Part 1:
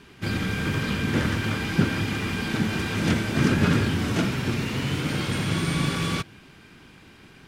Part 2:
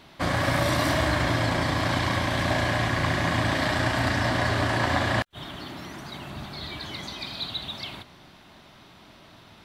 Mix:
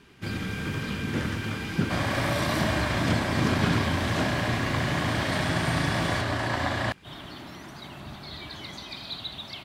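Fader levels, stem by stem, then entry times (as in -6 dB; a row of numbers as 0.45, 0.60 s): -5.0, -3.5 dB; 0.00, 1.70 s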